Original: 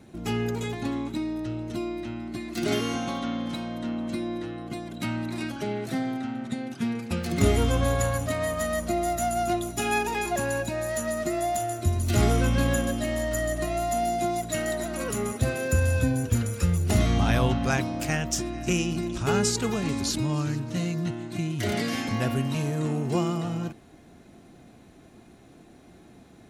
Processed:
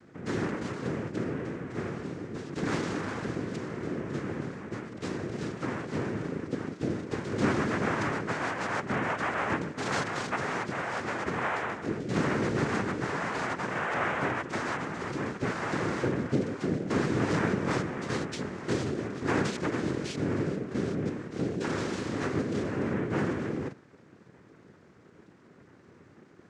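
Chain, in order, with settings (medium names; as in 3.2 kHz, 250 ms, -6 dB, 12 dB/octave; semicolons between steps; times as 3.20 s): treble shelf 4.8 kHz -9.5 dB; noise-vocoded speech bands 3; distance through air 73 m; trim -3 dB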